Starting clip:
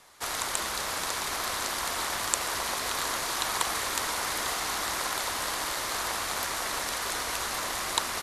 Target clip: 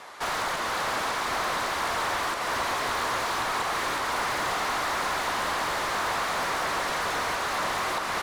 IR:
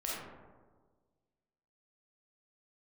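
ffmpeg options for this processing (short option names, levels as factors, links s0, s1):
-filter_complex "[0:a]alimiter=limit=0.178:level=0:latency=1:release=197,asplit=2[s0][s1];[s1]highpass=f=720:p=1,volume=17.8,asoftclip=type=tanh:threshold=0.178[s2];[s0][s2]amix=inputs=2:normalize=0,lowpass=f=1100:p=1,volume=0.501"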